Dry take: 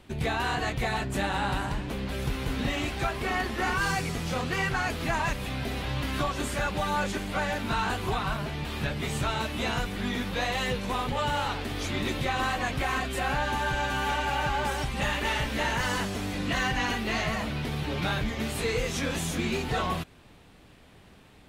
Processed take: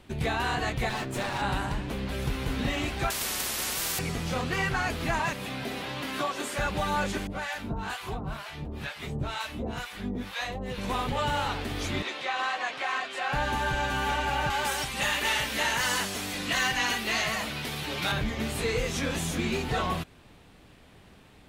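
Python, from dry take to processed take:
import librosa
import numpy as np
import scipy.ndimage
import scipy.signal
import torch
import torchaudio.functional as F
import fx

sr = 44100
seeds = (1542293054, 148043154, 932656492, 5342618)

y = fx.lower_of_two(x, sr, delay_ms=8.4, at=(0.89, 1.42))
y = fx.spectral_comp(y, sr, ratio=10.0, at=(3.1, 3.99))
y = fx.highpass(y, sr, hz=fx.line((5.19, 120.0), (6.57, 350.0)), slope=12, at=(5.19, 6.57), fade=0.02)
y = fx.harmonic_tremolo(y, sr, hz=2.1, depth_pct=100, crossover_hz=720.0, at=(7.27, 10.78))
y = fx.bandpass_edges(y, sr, low_hz=610.0, high_hz=5700.0, at=(12.02, 13.33))
y = fx.tilt_eq(y, sr, slope=2.5, at=(14.5, 18.12))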